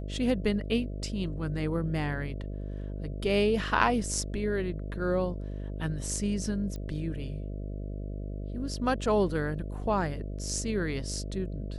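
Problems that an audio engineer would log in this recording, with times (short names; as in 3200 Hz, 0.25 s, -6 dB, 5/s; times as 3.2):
buzz 50 Hz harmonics 13 -36 dBFS
6.76 pop -27 dBFS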